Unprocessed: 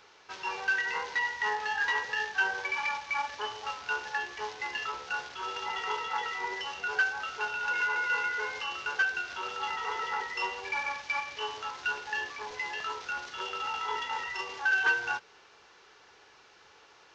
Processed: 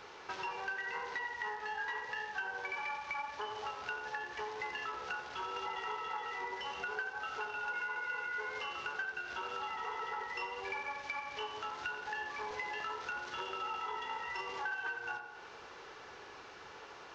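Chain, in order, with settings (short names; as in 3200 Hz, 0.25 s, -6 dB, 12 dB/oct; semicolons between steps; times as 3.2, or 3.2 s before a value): high shelf 2300 Hz -8 dB; compressor, threshold -47 dBFS, peak gain reduction 20.5 dB; on a send: tape echo 88 ms, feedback 67%, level -7 dB, low-pass 2400 Hz; on the sum: gain +8 dB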